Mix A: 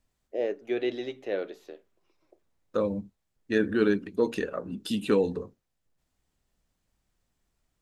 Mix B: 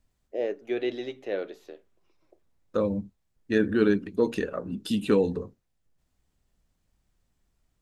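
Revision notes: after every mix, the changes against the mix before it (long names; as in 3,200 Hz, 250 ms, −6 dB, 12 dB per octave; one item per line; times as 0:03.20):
second voice: add low-shelf EQ 220 Hz +5.5 dB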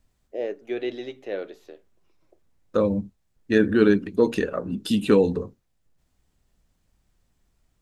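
second voice +4.5 dB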